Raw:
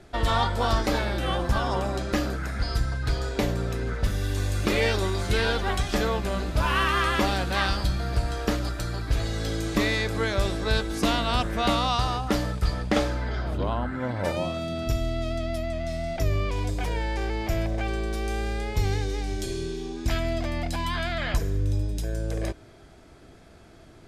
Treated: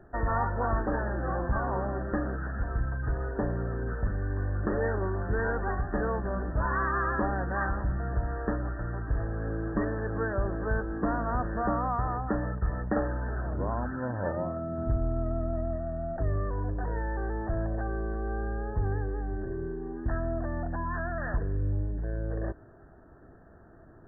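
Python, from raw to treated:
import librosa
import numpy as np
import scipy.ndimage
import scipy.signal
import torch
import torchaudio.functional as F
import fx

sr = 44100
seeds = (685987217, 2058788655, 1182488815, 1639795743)

p1 = fx.low_shelf(x, sr, hz=390.0, db=3.5, at=(14.78, 15.76))
p2 = 10.0 ** (-22.5 / 20.0) * np.tanh(p1 / 10.0 ** (-22.5 / 20.0))
p3 = p1 + (p2 * 10.0 ** (-4.0 / 20.0))
p4 = fx.brickwall_lowpass(p3, sr, high_hz=1900.0)
y = p4 * 10.0 ** (-7.0 / 20.0)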